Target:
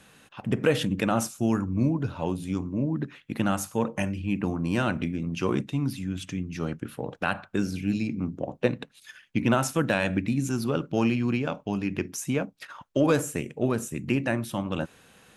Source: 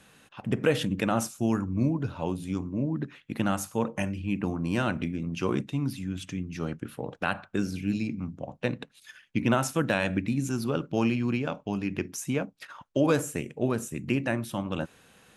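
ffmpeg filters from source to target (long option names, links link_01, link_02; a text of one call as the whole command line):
ffmpeg -i in.wav -filter_complex "[0:a]asettb=1/sr,asplit=3[link_01][link_02][link_03];[link_01]atrim=end=8.164[link_04];[link_02]atrim=start=8.16:end=8.67,asetpts=PTS-STARTPTS,afade=type=in:duration=0.004:curve=qsin,afade=type=out:start_time=0.506:duration=0.004:curve=qsin,equalizer=frequency=370:width=1.3:gain=9[link_05];[link_03]atrim=start=8.666[link_06];[link_04][link_05]acrossfade=duration=0.004:curve1=hsin:curve2=qsin[link_07];[link_07][link_06]acrossfade=duration=0.004:curve1=qsin:curve2=hsin,asplit=2[link_08][link_09];[link_09]asoftclip=type=tanh:threshold=-19dB,volume=-12dB[link_10];[link_08][link_10]amix=inputs=2:normalize=0" out.wav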